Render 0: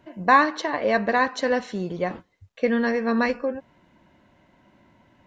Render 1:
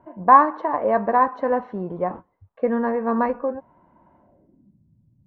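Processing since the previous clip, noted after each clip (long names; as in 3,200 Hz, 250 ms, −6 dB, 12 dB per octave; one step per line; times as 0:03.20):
low-pass filter sweep 1,000 Hz → 140 Hz, 0:04.17–0:04.80
level −1 dB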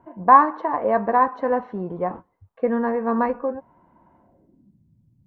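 notch filter 590 Hz, Q 15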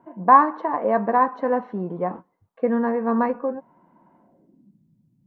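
low shelf with overshoot 120 Hz −12 dB, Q 1.5
level −1 dB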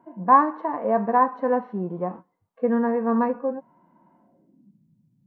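harmonic and percussive parts rebalanced percussive −10 dB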